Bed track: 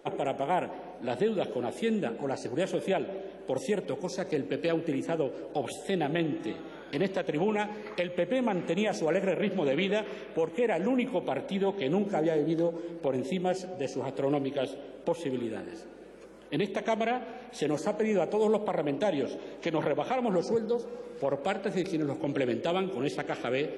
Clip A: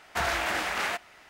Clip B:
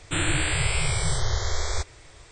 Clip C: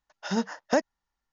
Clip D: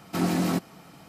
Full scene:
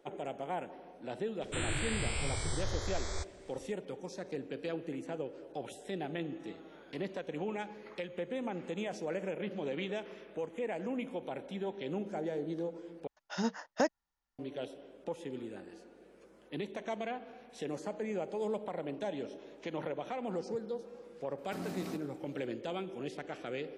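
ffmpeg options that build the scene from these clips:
ffmpeg -i bed.wav -i cue0.wav -i cue1.wav -i cue2.wav -i cue3.wav -filter_complex "[0:a]volume=-9.5dB[link_01];[4:a]aecho=1:1:106:0.211[link_02];[link_01]asplit=2[link_03][link_04];[link_03]atrim=end=13.074[link_05];[3:a]atrim=end=1.32,asetpts=PTS-STARTPTS,volume=-6dB[link_06];[link_04]atrim=start=14.386[link_07];[2:a]atrim=end=2.31,asetpts=PTS-STARTPTS,volume=-11dB,afade=type=in:duration=0.004:curve=hsin,afade=type=out:start_time=2.306:duration=0.004:curve=hsin,adelay=1410[link_08];[link_02]atrim=end=1.08,asetpts=PTS-STARTPTS,volume=-16.5dB,afade=type=in:duration=0.004:curve=hsin,afade=type=out:start_time=1.076:duration=0.004:curve=hsin,adelay=21380[link_09];[link_05][link_06]acrossfade=duration=0.004:curve1=hsin:curve2=hsin[link_10];[link_10][link_07]acrossfade=duration=0.004:curve1=hsin:curve2=hsin[link_11];[link_11][link_08][link_09]amix=inputs=3:normalize=0" out.wav

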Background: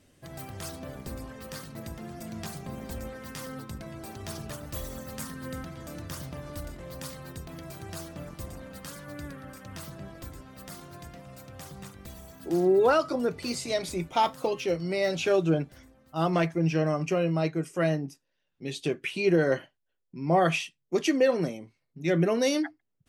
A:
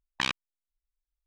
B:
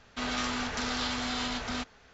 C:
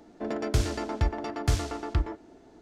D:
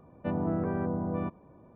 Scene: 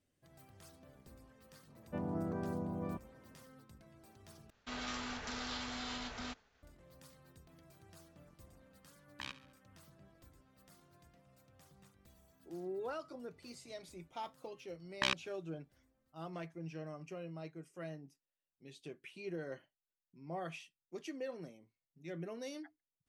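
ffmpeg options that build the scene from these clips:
ffmpeg -i bed.wav -i cue0.wav -i cue1.wav -i cue2.wav -i cue3.wav -filter_complex "[1:a]asplit=2[link_01][link_02];[0:a]volume=-20dB[link_03];[4:a]highpass=48[link_04];[2:a]agate=range=-33dB:threshold=-54dB:ratio=3:release=100:detection=peak[link_05];[link_01]aecho=1:1:69|138|207|276:0.168|0.0789|0.0371|0.0174[link_06];[link_03]asplit=2[link_07][link_08];[link_07]atrim=end=4.504[link_09];[link_05]atrim=end=2.13,asetpts=PTS-STARTPTS,volume=-10dB[link_10];[link_08]atrim=start=6.626[link_11];[link_04]atrim=end=1.75,asetpts=PTS-STARTPTS,volume=-8.5dB,afade=type=in:duration=0.004:curve=hsin,afade=type=out:start_time=1.746:duration=0.004:curve=hsin,adelay=1680[link_12];[link_06]atrim=end=1.26,asetpts=PTS-STARTPTS,volume=-17dB,afade=type=in:duration=0.004:curve=hsin,afade=type=out:start_time=1.256:duration=0.004:curve=hsin,adelay=9000[link_13];[link_02]atrim=end=1.26,asetpts=PTS-STARTPTS,volume=-4.5dB,afade=type=in:duration=0.004:curve=hsin,afade=type=out:start_time=1.256:duration=0.004:curve=hsin,adelay=14820[link_14];[link_09][link_10]acrossfade=duration=0.004:curve1=hsin:curve2=hsin[link_15];[link_15][link_11]acrossfade=duration=0.004:curve1=hsin:curve2=hsin[link_16];[link_16][link_12][link_13][link_14]amix=inputs=4:normalize=0" out.wav

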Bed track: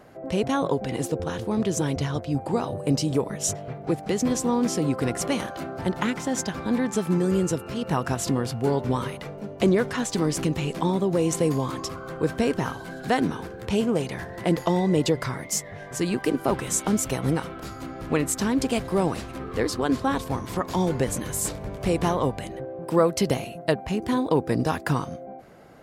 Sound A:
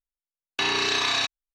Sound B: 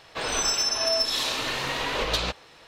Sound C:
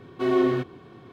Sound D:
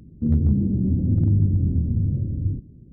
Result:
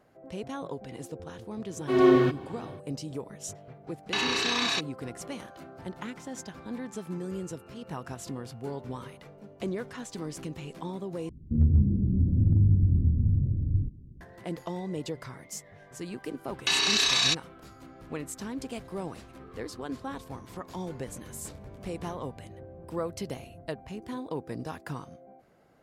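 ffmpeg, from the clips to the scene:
ffmpeg -i bed.wav -i cue0.wav -i cue1.wav -i cue2.wav -i cue3.wav -filter_complex "[1:a]asplit=2[link_01][link_02];[4:a]asplit=2[link_03][link_04];[0:a]volume=-13dB[link_05];[3:a]dynaudnorm=framelen=170:gausssize=3:maxgain=11dB[link_06];[link_03]lowshelf=frequency=100:gain=12[link_07];[link_02]equalizer=frequency=8800:width_type=o:width=2.8:gain=14[link_08];[link_04]acompressor=threshold=-37dB:ratio=6:attack=3.2:release=140:knee=1:detection=peak[link_09];[link_05]asplit=2[link_10][link_11];[link_10]atrim=end=11.294[link_12];[link_07]atrim=end=2.92,asetpts=PTS-STARTPTS,volume=-8.5dB[link_13];[link_11]atrim=start=14.206[link_14];[link_06]atrim=end=1.12,asetpts=PTS-STARTPTS,volume=-6.5dB,afade=type=in:duration=0.004:curve=hsin,afade=type=out:start_time=1.116:duration=0.004:curve=hsin,adelay=1680[link_15];[link_01]atrim=end=1.54,asetpts=PTS-STARTPTS,volume=-4dB,afade=type=in:duration=0.004:curve=hsin,afade=type=out:start_time=1.536:duration=0.004:curve=hsin,adelay=3540[link_16];[link_08]atrim=end=1.54,asetpts=PTS-STARTPTS,volume=-8dB,afade=type=in:duration=0.004:curve=hsin,afade=type=out:start_time=1.536:duration=0.004:curve=hsin,adelay=16080[link_17];[link_09]atrim=end=2.92,asetpts=PTS-STARTPTS,volume=-12.5dB,afade=type=in:duration=0.004:curve=hsin,afade=type=out:start_time=2.916:duration=0.004:curve=hsin,adelay=21090[link_18];[link_12][link_13]acrossfade=duration=0.004:curve1=hsin:curve2=hsin[link_19];[link_19][link_14]acrossfade=duration=0.004:curve1=hsin:curve2=hsin[link_20];[link_20][link_15][link_16][link_17][link_18]amix=inputs=5:normalize=0" out.wav

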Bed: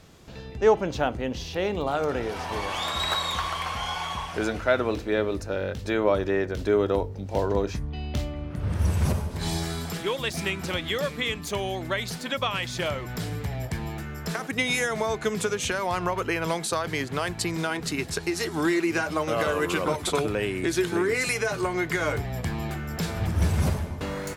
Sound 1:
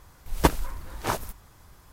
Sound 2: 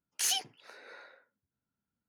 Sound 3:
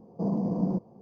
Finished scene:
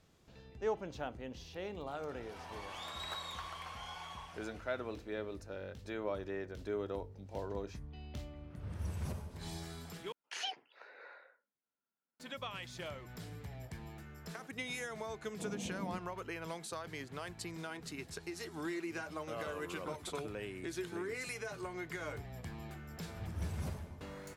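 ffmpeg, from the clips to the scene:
ffmpeg -i bed.wav -i cue0.wav -i cue1.wav -i cue2.wav -filter_complex "[0:a]volume=-16dB[link_01];[2:a]highpass=410,lowpass=2600[link_02];[link_01]asplit=2[link_03][link_04];[link_03]atrim=end=10.124[link_05];[link_02]atrim=end=2.08,asetpts=PTS-STARTPTS,volume=-2dB[link_06];[link_04]atrim=start=12.196[link_07];[3:a]atrim=end=1.01,asetpts=PTS-STARTPTS,volume=-15dB,afade=type=in:duration=0.004:curve=hsin,afade=type=out:start_time=1.006:duration=0.004:curve=hsin,adelay=15200[link_08];[link_05][link_06]acrossfade=duration=0.004:curve1=hsin:curve2=hsin[link_09];[link_09][link_07]acrossfade=duration=0.004:curve1=hsin:curve2=hsin[link_10];[link_10][link_08]amix=inputs=2:normalize=0" out.wav

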